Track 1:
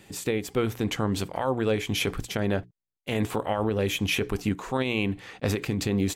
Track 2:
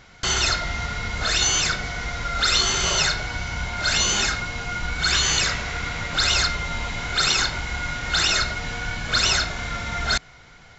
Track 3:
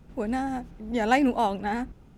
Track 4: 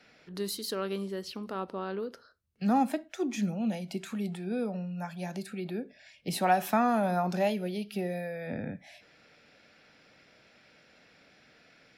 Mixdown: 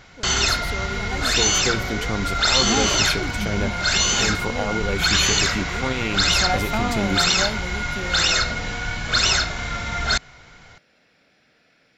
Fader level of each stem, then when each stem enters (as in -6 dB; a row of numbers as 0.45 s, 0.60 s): 0.0 dB, +1.5 dB, -12.5 dB, -0.5 dB; 1.10 s, 0.00 s, 0.00 s, 0.00 s